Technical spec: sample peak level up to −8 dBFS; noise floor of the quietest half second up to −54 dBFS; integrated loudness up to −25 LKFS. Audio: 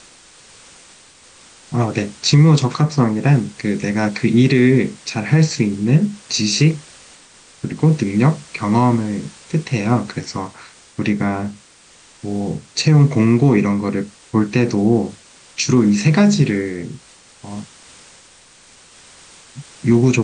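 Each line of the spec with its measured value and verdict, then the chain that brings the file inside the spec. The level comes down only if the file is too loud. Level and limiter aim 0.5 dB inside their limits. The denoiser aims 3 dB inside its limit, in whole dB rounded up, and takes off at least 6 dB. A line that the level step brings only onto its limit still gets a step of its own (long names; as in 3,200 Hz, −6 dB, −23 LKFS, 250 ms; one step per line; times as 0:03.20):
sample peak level −3.0 dBFS: out of spec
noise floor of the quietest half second −48 dBFS: out of spec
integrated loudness −17.0 LKFS: out of spec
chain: level −8.5 dB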